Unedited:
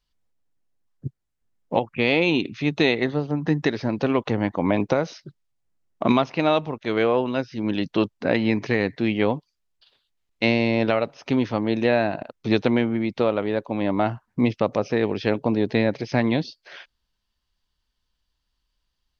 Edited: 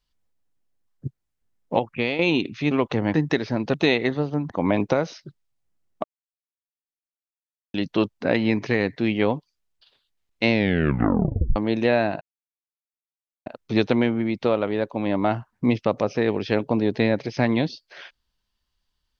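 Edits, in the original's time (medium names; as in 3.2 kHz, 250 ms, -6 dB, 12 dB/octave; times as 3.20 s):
1.93–2.19 s: fade out, to -10.5 dB
2.71–3.47 s: swap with 4.07–4.50 s
6.04–7.74 s: mute
10.50 s: tape stop 1.06 s
12.21 s: insert silence 1.25 s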